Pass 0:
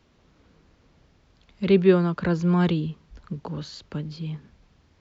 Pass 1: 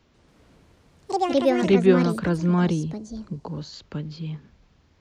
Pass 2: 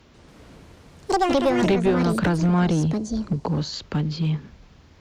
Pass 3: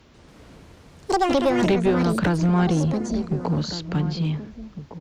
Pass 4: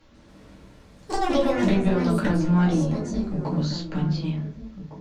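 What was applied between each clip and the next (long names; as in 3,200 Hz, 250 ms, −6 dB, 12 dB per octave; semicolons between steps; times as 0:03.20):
delay with pitch and tempo change per echo 142 ms, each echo +6 semitones, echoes 2; gain on a spectral selection 0:02.66–0:03.73, 1,100–3,900 Hz −6 dB
downward compressor 8 to 1, threshold −23 dBFS, peak gain reduction 12.5 dB; asymmetric clip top −26.5 dBFS; level +9 dB
slap from a distant wall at 250 metres, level −12 dB
rectangular room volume 120 cubic metres, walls furnished, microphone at 2.3 metres; level −8.5 dB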